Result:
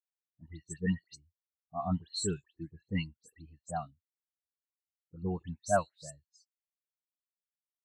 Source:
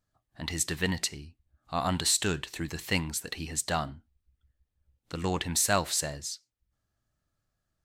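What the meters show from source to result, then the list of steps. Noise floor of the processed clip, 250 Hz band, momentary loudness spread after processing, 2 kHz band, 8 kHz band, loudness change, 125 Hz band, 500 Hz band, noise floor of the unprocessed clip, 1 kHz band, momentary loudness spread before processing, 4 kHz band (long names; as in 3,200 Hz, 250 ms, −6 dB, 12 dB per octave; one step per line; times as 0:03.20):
below −85 dBFS, −2.5 dB, 18 LU, −11.0 dB, −14.5 dB, −6.0 dB, −3.5 dB, −3.0 dB, −83 dBFS, −4.5 dB, 13 LU, −13.5 dB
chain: all-pass dispersion highs, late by 116 ms, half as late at 2,700 Hz
every bin expanded away from the loudest bin 2.5 to 1
level −4 dB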